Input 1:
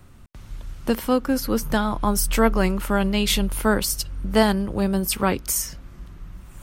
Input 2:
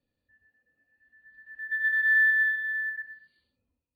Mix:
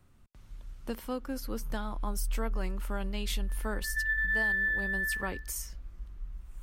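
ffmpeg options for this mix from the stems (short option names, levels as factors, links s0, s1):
-filter_complex "[0:a]asubboost=boost=7:cutoff=51,volume=0.2[s0];[1:a]adelay=2250,volume=0.891[s1];[s0][s1]amix=inputs=2:normalize=0,acompressor=threshold=0.0447:ratio=4"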